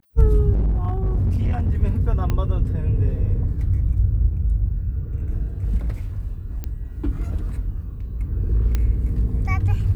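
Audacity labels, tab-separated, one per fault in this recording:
0.520000	1.720000	clipped -16.5 dBFS
2.300000	2.300000	pop -11 dBFS
6.640000	6.640000	pop -16 dBFS
8.750000	8.750000	pop -10 dBFS

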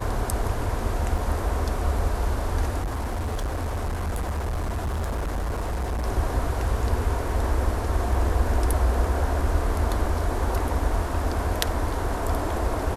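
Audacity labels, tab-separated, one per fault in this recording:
1.180000	1.180000	gap 4.2 ms
2.820000	6.060000	clipped -24 dBFS

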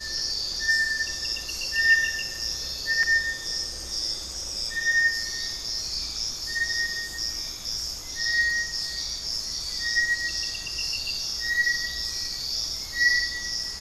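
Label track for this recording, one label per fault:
3.030000	3.030000	gap 3.3 ms

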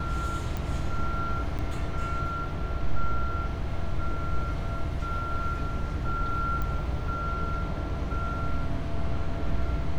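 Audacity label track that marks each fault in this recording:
0.570000	0.570000	pop
1.580000	1.590000	gap 7.8 ms
6.620000	6.620000	pop -20 dBFS

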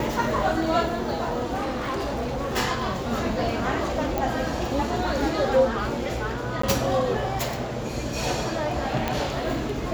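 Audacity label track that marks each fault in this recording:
1.540000	2.570000	clipped -24.5 dBFS
4.180000	4.180000	pop
6.620000	6.630000	gap 14 ms
9.080000	9.080000	pop -11 dBFS

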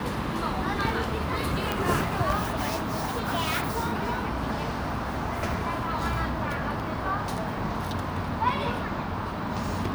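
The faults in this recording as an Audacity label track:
1.720000	1.720000	pop

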